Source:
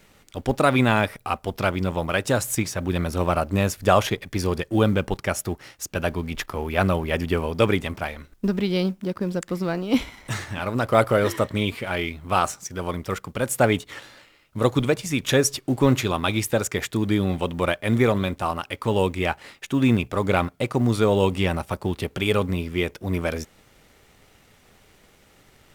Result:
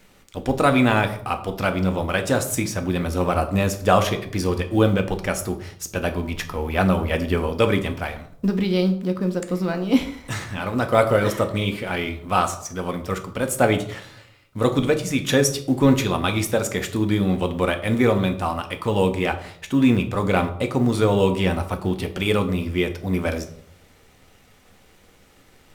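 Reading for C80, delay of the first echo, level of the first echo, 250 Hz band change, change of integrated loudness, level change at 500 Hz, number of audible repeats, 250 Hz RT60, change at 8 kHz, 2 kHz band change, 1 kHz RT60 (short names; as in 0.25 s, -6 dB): 15.5 dB, none, none, +2.5 dB, +1.5 dB, +1.5 dB, none, 0.65 s, +0.5 dB, +1.0 dB, 0.60 s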